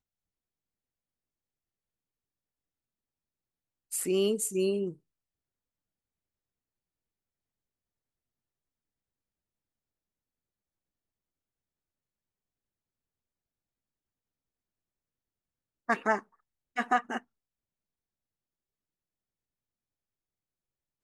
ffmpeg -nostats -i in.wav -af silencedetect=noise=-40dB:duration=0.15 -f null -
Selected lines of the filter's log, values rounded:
silence_start: 0.00
silence_end: 3.92 | silence_duration: 3.92
silence_start: 4.93
silence_end: 15.89 | silence_duration: 10.96
silence_start: 16.19
silence_end: 16.77 | silence_duration: 0.57
silence_start: 17.18
silence_end: 21.03 | silence_duration: 3.85